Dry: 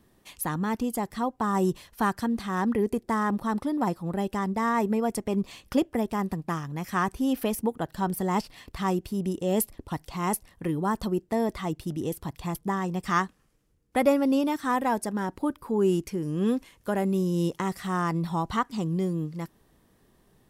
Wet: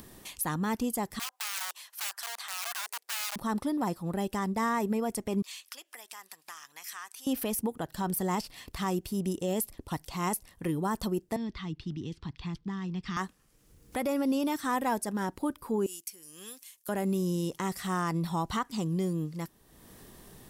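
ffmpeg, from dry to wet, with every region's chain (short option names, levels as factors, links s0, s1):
-filter_complex "[0:a]asettb=1/sr,asplit=3[s0][s1][s2];[s0]atrim=end=1.194[s3];[s1]atrim=start=1.19:end=3.36,asetpts=PTS-STARTPTS,afade=t=in:d=0.004:c=qsin,afade=t=out:st=2.166:d=0.004:c=qsin,aeval=exprs='(mod(14.1*val(0)+1,2)-1)/14.1':c=same,highpass=f=810:w=0.5412,highpass=f=810:w=1.3066[s4];[s2]atrim=start=3.356[s5];[s3][s4]acrossfade=d=0.004:c1=hsin:c2=qsin[s6];[s6][s5]acrossfade=d=0.004:c1=qsin:c2=hsin,asettb=1/sr,asplit=3[s7][s8][s9];[s7]atrim=end=5.424[s10];[s8]atrim=start=5.42:end=7.27,asetpts=PTS-STARTPTS,afade=t=in:d=0.004:c=qsin,afade=t=out:st=1.846:d=0.004:c=qsin,equalizer=f=7100:t=o:w=2.6:g=3.5,acompressor=threshold=0.01:ratio=2:attack=3.2:release=140:knee=1:detection=peak,highpass=1400[s11];[s9]atrim=start=7.266[s12];[s10][s11]acrossfade=d=0.004:c1=hsin:c2=qsin[s13];[s13][s12]acrossfade=d=0.004:c1=qsin:c2=hsin,asettb=1/sr,asplit=3[s14][s15][s16];[s14]atrim=end=11.364[s17];[s15]atrim=start=11.36:end=13.17,asetpts=PTS-STARTPTS,afade=t=in:d=0.004:c=qsin,afade=t=out:st=1.806:d=0.004:c=qsin,acrossover=split=280|3000[s18][s19][s20];[s19]acompressor=threshold=0.00891:ratio=2.5:attack=3.2:release=140:knee=2.83:detection=peak[s21];[s18][s21][s20]amix=inputs=3:normalize=0,lowpass=f=4400:w=0.5412,lowpass=f=4400:w=1.3066,equalizer=f=600:t=o:w=0.82:g=-13.5[s22];[s16]atrim=start=13.166[s23];[s17][s22]acrossfade=d=0.004:c1=hsin:c2=qsin[s24];[s24][s23]acrossfade=d=0.004:c1=qsin:c2=hsin,asettb=1/sr,asplit=3[s25][s26][s27];[s25]atrim=end=15.864[s28];[s26]atrim=start=15.86:end=16.89,asetpts=PTS-STARTPTS,afade=t=in:d=0.004:c=qsin,afade=t=out:st=1.026:d=0.004:c=qsin,agate=range=0.0224:threshold=0.002:ratio=3:release=100:detection=peak,aderivative[s29];[s27]atrim=start=16.886[s30];[s28][s29]acrossfade=d=0.004:c1=hsin:c2=qsin[s31];[s31][s30]acrossfade=d=0.004:c1=qsin:c2=hsin,highshelf=f=3900:g=8,alimiter=limit=0.119:level=0:latency=1:release=56,acompressor=mode=upward:threshold=0.0141:ratio=2.5,volume=0.75"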